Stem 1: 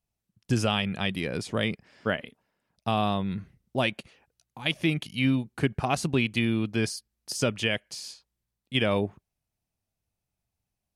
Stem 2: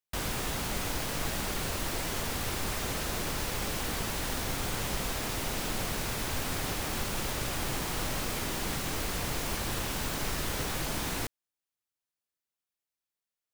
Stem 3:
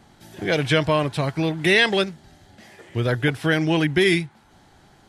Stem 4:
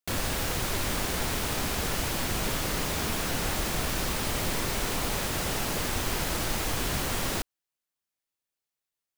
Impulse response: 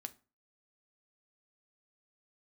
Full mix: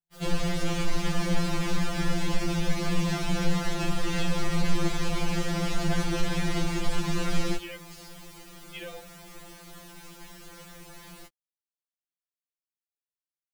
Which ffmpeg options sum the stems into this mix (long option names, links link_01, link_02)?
-filter_complex "[0:a]volume=-11dB[link_01];[1:a]volume=-12dB[link_02];[2:a]adelay=2400,volume=-17.5dB[link_03];[3:a]lowpass=6400,lowshelf=frequency=210:gain=11.5,adelay=150,volume=1dB[link_04];[link_01][link_02][link_03][link_04]amix=inputs=4:normalize=0,asoftclip=type=tanh:threshold=-14dB,equalizer=frequency=160:width_type=o:width=2.4:gain=2,afftfilt=real='re*2.83*eq(mod(b,8),0)':imag='im*2.83*eq(mod(b,8),0)':win_size=2048:overlap=0.75"